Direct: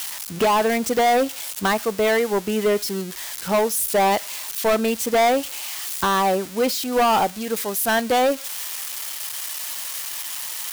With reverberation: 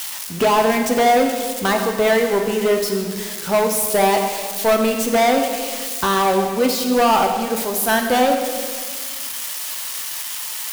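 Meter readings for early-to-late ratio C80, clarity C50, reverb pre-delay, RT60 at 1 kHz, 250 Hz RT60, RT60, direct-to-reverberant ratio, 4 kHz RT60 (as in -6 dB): 6.5 dB, 5.0 dB, 3 ms, 1.6 s, 2.1 s, 1.7 s, 3.0 dB, 1.5 s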